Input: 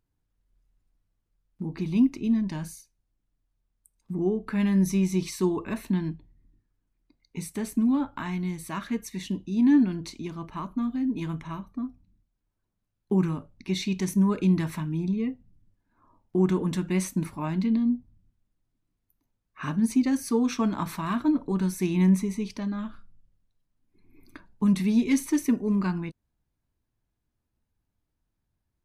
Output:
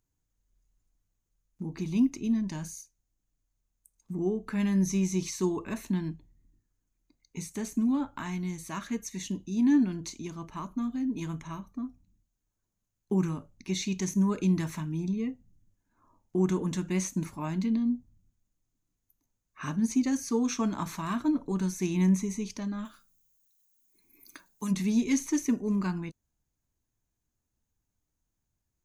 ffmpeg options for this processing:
-filter_complex "[0:a]asplit=3[a][b][c];[a]afade=t=out:st=22.84:d=0.02[d];[b]aemphasis=mode=production:type=riaa,afade=t=in:st=22.84:d=0.02,afade=t=out:st=24.7:d=0.02[e];[c]afade=t=in:st=24.7:d=0.02[f];[d][e][f]amix=inputs=3:normalize=0,highshelf=f=11k:g=8,acrossover=split=5800[g][h];[h]acompressor=threshold=-44dB:ratio=4:attack=1:release=60[i];[g][i]amix=inputs=2:normalize=0,equalizer=f=6.6k:w=3.6:g=13.5,volume=-3.5dB"

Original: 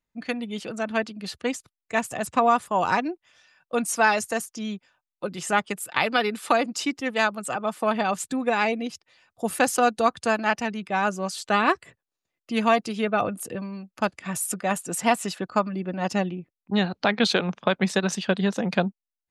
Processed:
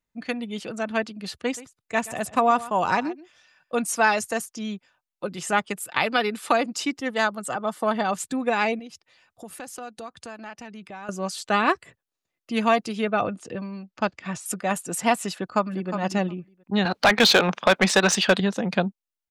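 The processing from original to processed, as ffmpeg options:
-filter_complex "[0:a]asettb=1/sr,asplit=3[a][b][c];[a]atrim=end=1.404[d];[b]atrim=start=1.4:end=3.77,asetpts=PTS-STARTPTS,afade=t=in:d=0.004:c=qsin,afade=t=out:st=2.366:d=0.004:c=qsin,aecho=1:1:127:0.133,atrim=end_sample=104517[e];[c]atrim=start=3.766[f];[d][e]acrossfade=d=0.004:c1=hsin:c2=qsin[g];[g][f]acrossfade=d=0.004:c1=qsin:c2=hsin,asettb=1/sr,asplit=3[h][i][j];[h]atrim=end=7.014[k];[i]atrim=start=7.01:end=8.13,asetpts=PTS-STARTPTS,afade=t=in:d=0.004:c=qsin,afade=t=out:st=1.116:d=0.004:c=qsin,bandreject=f=2.5k:w=5.7[l];[j]atrim=start=8.126[m];[k][l]acrossfade=d=0.004:c1=hsin:c2=qsin[n];[n][m]acrossfade=d=0.004:c1=qsin:c2=hsin,asettb=1/sr,asplit=3[o][p][q];[o]atrim=end=8.794[r];[p]atrim=start=8.79:end=11.09,asetpts=PTS-STARTPTS,afade=t=in:d=0.004:c=qsin,afade=t=out:st=2.296:d=0.004:c=qsin,acompressor=threshold=-40dB:ratio=3:attack=3.2:release=140:knee=1:detection=peak[s];[q]atrim=start=11.086[t];[r][s]acrossfade=d=0.004:c1=hsin:c2=qsin[u];[u][t]acrossfade=d=0.004:c1=qsin:c2=hsin,asettb=1/sr,asplit=3[v][w][x];[v]atrim=end=13.194[y];[w]atrim=start=13.19:end=14.46,asetpts=PTS-STARTPTS,afade=t=in:d=0.004:c=qsin,afade=t=out:st=1.266:d=0.004:c=qsin,lowpass=f=6.3k:w=0.5412,lowpass=f=6.3k:w=1.3066[z];[x]atrim=start=14.456[aa];[y][z]acrossfade=d=0.004:c1=hsin:c2=qsin[ab];[ab][aa]acrossfade=d=0.004:c1=qsin:c2=hsin,asplit=2[ac][ad];[ad]afade=t=in:st=15.35:d=0.01,afade=t=out:st=15.91:d=0.01,aecho=0:1:360|720:0.354813|0.0354813[ae];[ac][ae]amix=inputs=2:normalize=0,asettb=1/sr,asplit=3[af][ag][ah];[af]atrim=end=16.854[ai];[ag]atrim=start=16.85:end=18.4,asetpts=PTS-STARTPTS,afade=t=in:d=0.004:c=qsin,afade=t=out:st=1.546:d=0.004:c=qsin,asplit=2[aj][ak];[ak]highpass=f=720:p=1,volume=19dB,asoftclip=type=tanh:threshold=-7dB[al];[aj][al]amix=inputs=2:normalize=0,lowpass=f=6.1k:p=1,volume=-6dB[am];[ah]atrim=start=18.396[an];[ai][am]acrossfade=d=0.004:c1=hsin:c2=qsin[ao];[ao][an]acrossfade=d=0.004:c1=qsin:c2=hsin"

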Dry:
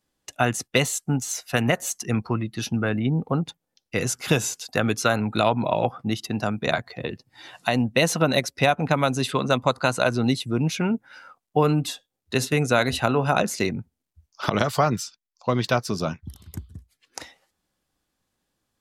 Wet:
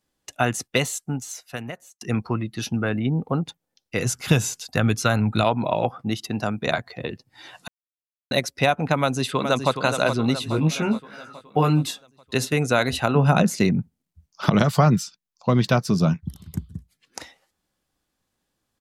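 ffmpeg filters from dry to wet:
-filter_complex "[0:a]asplit=3[a][b][c];[a]afade=t=out:st=4.05:d=0.02[d];[b]asubboost=boost=2.5:cutoff=210,afade=t=in:st=4.05:d=0.02,afade=t=out:st=5.43:d=0.02[e];[c]afade=t=in:st=5.43:d=0.02[f];[d][e][f]amix=inputs=3:normalize=0,asplit=2[g][h];[h]afade=t=in:st=8.98:d=0.01,afade=t=out:st=9.73:d=0.01,aecho=0:1:420|840|1260|1680|2100|2520|2940:0.421697|0.231933|0.127563|0.0701598|0.0385879|0.0212233|0.0116728[i];[g][i]amix=inputs=2:normalize=0,asettb=1/sr,asplit=3[j][k][l];[j]atrim=end=10.404[m];[k]atrim=start=10.4:end=11.91,asetpts=PTS-STARTPTS,afade=t=in:d=0.004:c=qsin,afade=t=out:st=1.506:d=0.004:c=qsin,asplit=2[n][o];[o]adelay=19,volume=-4dB[p];[n][p]amix=inputs=2:normalize=0,atrim=end_sample=66591[q];[l]atrim=start=11.906[r];[m][q]acrossfade=d=0.004:c1=hsin:c2=qsin[s];[s][r]acrossfade=d=0.004:c1=qsin:c2=hsin,asettb=1/sr,asplit=3[t][u][v];[t]atrim=end=13.154[w];[u]atrim=start=13.15:end=17.19,asetpts=PTS-STARTPTS,afade=t=in:d=0.004:c=qsin,afade=t=out:st=4.036:d=0.004:c=qsin,equalizer=f=170:w=1.5:g=12[x];[v]atrim=start=17.186[y];[w][x]acrossfade=d=0.004:c1=hsin:c2=qsin[z];[z][y]acrossfade=d=0.004:c1=qsin:c2=hsin,asplit=4[aa][ab][ac][ad];[aa]atrim=end=2.01,asetpts=PTS-STARTPTS,afade=t=out:st=0.62:d=1.39[ae];[ab]atrim=start=2.01:end=7.68,asetpts=PTS-STARTPTS,afade=t=in:d=0.004:c=hsin,afade=t=out:st=5.666:d=0.004:c=hsin[af];[ac]atrim=start=7.68:end=8.31,asetpts=PTS-STARTPTS,volume=0[ag];[ad]atrim=start=8.31,asetpts=PTS-STARTPTS,afade=t=in:d=0.004:c=hsin[ah];[ae][af][ag][ah]concat=n=4:v=0:a=1"

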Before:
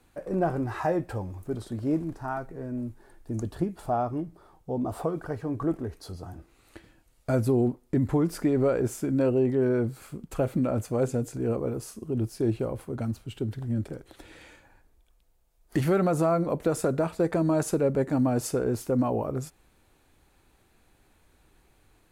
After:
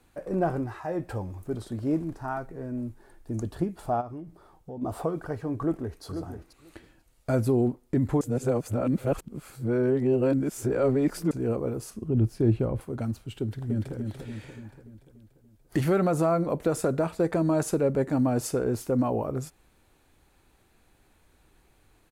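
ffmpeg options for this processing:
-filter_complex "[0:a]asplit=3[a][b][c];[a]afade=t=out:st=4:d=0.02[d];[b]acompressor=threshold=-38dB:ratio=3:attack=3.2:release=140:knee=1:detection=peak,afade=t=in:st=4:d=0.02,afade=t=out:st=4.81:d=0.02[e];[c]afade=t=in:st=4.81:d=0.02[f];[d][e][f]amix=inputs=3:normalize=0,asplit=2[g][h];[h]afade=t=in:st=5.6:d=0.01,afade=t=out:st=6.03:d=0.01,aecho=0:1:490|980:0.398107|0.0398107[i];[g][i]amix=inputs=2:normalize=0,asettb=1/sr,asplit=3[j][k][l];[j]atrim=end=11.904[m];[k]atrim=start=11.9:end=12.81,asetpts=PTS-STARTPTS,afade=t=in:d=0.004:c=qsin,afade=t=out:st=0.906:d=0.004:c=qsin,bass=f=250:g=7,treble=f=4k:g=-7[n];[l]atrim=start=12.806[o];[m][n]acrossfade=d=0.004:c1=hsin:c2=qsin[p];[p][o]acrossfade=d=0.004:c1=qsin:c2=hsin,asplit=2[q][r];[r]afade=t=in:st=13.4:d=0.01,afade=t=out:st=13.96:d=0.01,aecho=0:1:290|580|870|1160|1450|1740|2030:0.562341|0.309288|0.170108|0.0935595|0.0514577|0.0283018|0.015566[s];[q][s]amix=inputs=2:normalize=0,asplit=5[t][u][v][w][x];[t]atrim=end=0.81,asetpts=PTS-STARTPTS,afade=t=out:st=0.57:d=0.24:silence=0.316228[y];[u]atrim=start=0.81:end=0.83,asetpts=PTS-STARTPTS,volume=-10dB[z];[v]atrim=start=0.83:end=8.212,asetpts=PTS-STARTPTS,afade=t=in:d=0.24:silence=0.316228[aa];[w]atrim=start=8.208:end=11.312,asetpts=PTS-STARTPTS,areverse[ab];[x]atrim=start=11.308[ac];[y][z][aa]concat=n=3:v=0:a=1[ad];[ad][ab]acrossfade=d=0.004:c1=hsin:c2=hsin[ae];[ae][ac]acrossfade=d=0.004:c1=hsin:c2=hsin"

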